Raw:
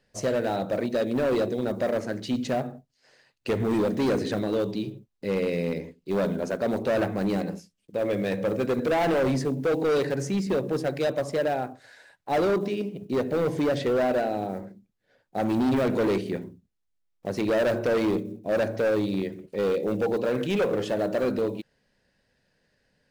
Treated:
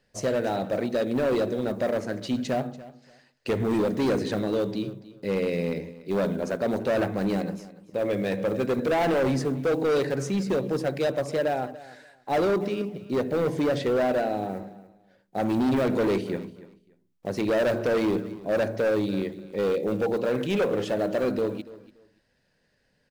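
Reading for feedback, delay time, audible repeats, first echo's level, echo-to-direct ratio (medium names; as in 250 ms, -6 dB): 21%, 288 ms, 2, -18.0 dB, -18.0 dB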